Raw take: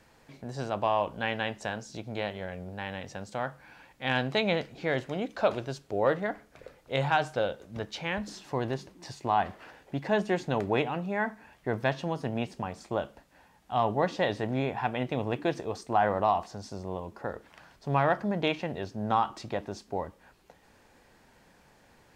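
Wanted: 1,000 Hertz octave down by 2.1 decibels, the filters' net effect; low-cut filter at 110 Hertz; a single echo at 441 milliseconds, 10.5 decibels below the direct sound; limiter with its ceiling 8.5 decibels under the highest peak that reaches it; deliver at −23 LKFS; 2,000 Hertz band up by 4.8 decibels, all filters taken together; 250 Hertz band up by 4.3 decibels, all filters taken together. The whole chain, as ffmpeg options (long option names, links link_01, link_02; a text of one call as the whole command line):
ffmpeg -i in.wav -af "highpass=110,equalizer=frequency=250:width_type=o:gain=6,equalizer=frequency=1000:width_type=o:gain=-5,equalizer=frequency=2000:width_type=o:gain=7.5,alimiter=limit=-17dB:level=0:latency=1,aecho=1:1:441:0.299,volume=8.5dB" out.wav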